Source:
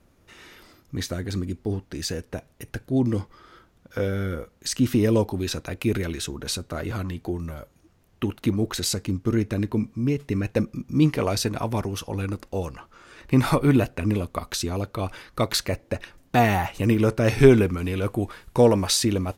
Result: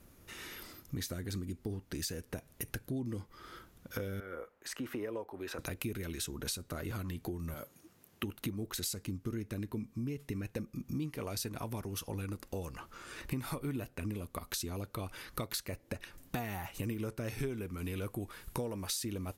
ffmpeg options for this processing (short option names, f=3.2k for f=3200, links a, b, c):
-filter_complex "[0:a]asettb=1/sr,asplit=3[a][b][c];[a]atrim=end=4.204[d];[b]atrim=start=4.2:end=5.59,asetpts=PTS-STARTPTS,afade=t=in:d=0.004:c=qsin,afade=t=out:st=1.386:d=0.004:c=qsin,acrossover=split=410 2100:gain=0.0891 1 0.1[e][f][g];[e][f][g]amix=inputs=3:normalize=0[h];[c]atrim=start=5.586[i];[d][h]acrossfade=d=0.004:c1=hsin:c2=qsin[j];[j][i]acrossfade=d=0.004:c1=qsin:c2=hsin,asettb=1/sr,asplit=3[k][l][m];[k]atrim=end=7.544[n];[l]atrim=start=7.54:end=8.24,asetpts=PTS-STARTPTS,afade=t=in:d=0.004:c=qsin,afade=t=out:st=0.696:d=0.004:c=qsin,highpass=160[o];[m]atrim=start=8.236[p];[n][o]acrossfade=d=0.004:c1=hsin:c2=qsin[q];[q][p]acrossfade=d=0.004:c1=qsin:c2=hsin,equalizer=f=13k:t=o:w=0.99:g=11.5,acompressor=threshold=-36dB:ratio=6,equalizer=f=700:t=o:w=1:g=-3"